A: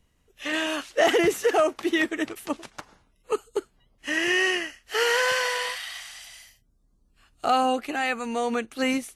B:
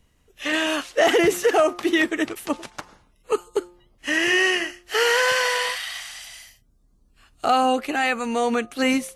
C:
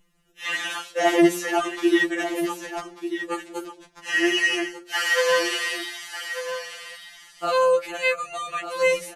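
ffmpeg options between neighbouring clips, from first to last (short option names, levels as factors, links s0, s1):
-filter_complex "[0:a]bandreject=f=176.4:t=h:w=4,bandreject=f=352.8:t=h:w=4,bandreject=f=529.2:t=h:w=4,bandreject=f=705.6:t=h:w=4,bandreject=f=882:t=h:w=4,bandreject=f=1058.4:t=h:w=4,bandreject=f=1234.8:t=h:w=4,asplit=2[s0][s1];[s1]alimiter=limit=0.141:level=0:latency=1,volume=0.708[s2];[s0][s2]amix=inputs=2:normalize=0"
-af "aecho=1:1:1193:0.316,afftfilt=real='re*2.83*eq(mod(b,8),0)':imag='im*2.83*eq(mod(b,8),0)':win_size=2048:overlap=0.75"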